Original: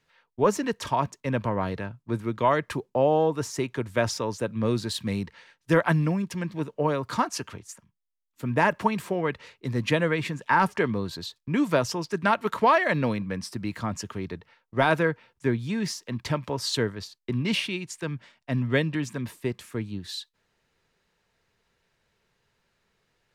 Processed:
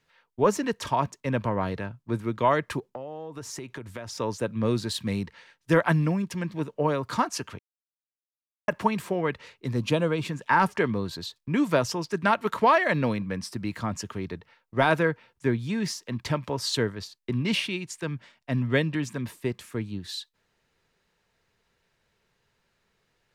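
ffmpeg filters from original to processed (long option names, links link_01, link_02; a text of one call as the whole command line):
ffmpeg -i in.wav -filter_complex "[0:a]asettb=1/sr,asplit=3[link_01][link_02][link_03];[link_01]atrim=end=2.794[link_04];[link_02]atrim=start=2.79:end=4.18,asetpts=PTS-STARTPTS,afade=type=in:duration=0.004:curve=qsin,afade=type=out:start_time=1.386:duration=0.004:curve=qsin,acompressor=threshold=-33dB:ratio=12:attack=3.2:release=140:knee=1:detection=peak[link_05];[link_03]atrim=start=4.176[link_06];[link_04][link_05]acrossfade=duration=0.004:curve1=hsin:curve2=qsin[link_07];[link_07][link_06]acrossfade=duration=0.004:curve1=qsin:curve2=hsin,asettb=1/sr,asplit=3[link_08][link_09][link_10];[link_08]atrim=end=9.764[link_11];[link_09]atrim=start=9.76:end=10.29,asetpts=PTS-STARTPTS,afade=type=in:duration=0.004:curve=qsin,afade=type=out:start_time=0.526:duration=0.004:curve=qsin,equalizer=frequency=1900:width_type=o:width=0.42:gain=-14.5[link_12];[link_10]atrim=start=10.286[link_13];[link_11][link_12]acrossfade=duration=0.004:curve1=hsin:curve2=qsin[link_14];[link_14][link_13]acrossfade=duration=0.004:curve1=qsin:curve2=hsin,asplit=3[link_15][link_16][link_17];[link_15]atrim=end=7.59,asetpts=PTS-STARTPTS,afade=type=out:start_time=7.586:duration=0.004:curve=hsin[link_18];[link_16]atrim=start=7.59:end=8.68,asetpts=PTS-STARTPTS,volume=0[link_19];[link_17]atrim=start=8.68,asetpts=PTS-STARTPTS,afade=type=in:duration=0.004:curve=hsin[link_20];[link_18][link_19][link_20]concat=n=3:v=0:a=1" out.wav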